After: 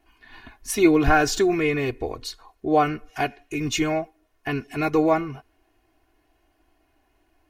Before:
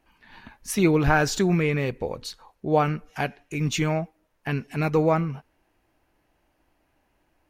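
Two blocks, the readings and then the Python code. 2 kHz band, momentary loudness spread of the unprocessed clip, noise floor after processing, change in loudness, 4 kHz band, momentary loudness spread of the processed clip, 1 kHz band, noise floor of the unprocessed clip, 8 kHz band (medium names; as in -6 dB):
+2.0 dB, 16 LU, -67 dBFS, +2.0 dB, +2.5 dB, 17 LU, +3.0 dB, -70 dBFS, +2.5 dB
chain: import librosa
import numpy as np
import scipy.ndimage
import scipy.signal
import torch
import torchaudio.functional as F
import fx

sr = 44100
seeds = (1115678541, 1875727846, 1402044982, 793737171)

y = x + 0.83 * np.pad(x, (int(2.8 * sr / 1000.0), 0))[:len(x)]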